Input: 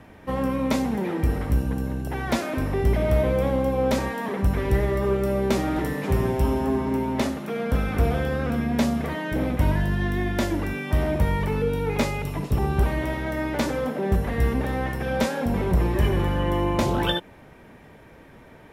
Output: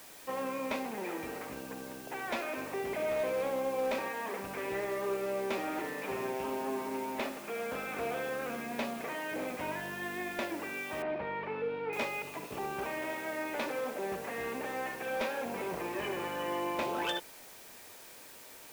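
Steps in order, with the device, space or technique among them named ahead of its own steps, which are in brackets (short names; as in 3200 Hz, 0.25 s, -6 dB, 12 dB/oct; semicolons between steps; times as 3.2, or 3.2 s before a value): drive-through speaker (BPF 420–3500 Hz; bell 2500 Hz +8 dB 0.21 oct; hard clip -21 dBFS, distortion -21 dB; white noise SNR 16 dB); 11.02–11.93 Bessel low-pass 2400 Hz, order 8; gain -6.5 dB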